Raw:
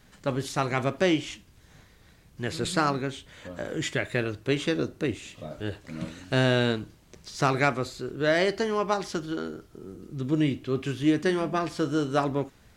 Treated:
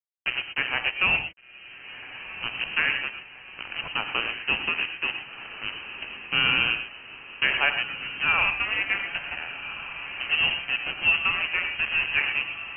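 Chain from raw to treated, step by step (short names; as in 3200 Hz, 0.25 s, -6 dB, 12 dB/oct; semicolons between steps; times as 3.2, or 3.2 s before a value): sample gate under -26 dBFS; inverted band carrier 3000 Hz; on a send: diffused feedback echo 1.506 s, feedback 62%, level -12 dB; on the sum: non-linear reverb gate 0.14 s rising, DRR 7.5 dB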